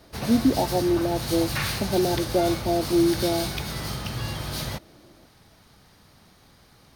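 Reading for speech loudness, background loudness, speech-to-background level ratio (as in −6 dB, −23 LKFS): −24.5 LKFS, −30.0 LKFS, 5.5 dB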